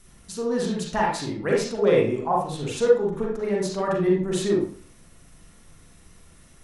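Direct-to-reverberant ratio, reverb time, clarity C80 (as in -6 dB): -3.5 dB, 0.50 s, 7.5 dB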